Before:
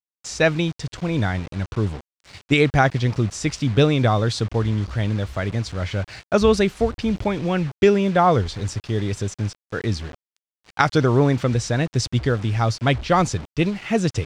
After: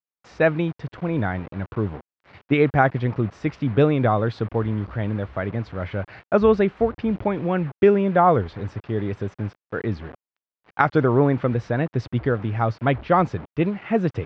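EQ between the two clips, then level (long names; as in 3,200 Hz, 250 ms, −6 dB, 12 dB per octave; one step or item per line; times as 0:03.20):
high-pass filter 160 Hz 6 dB per octave
low-pass filter 1,800 Hz 12 dB per octave
high-frequency loss of the air 64 metres
+1.0 dB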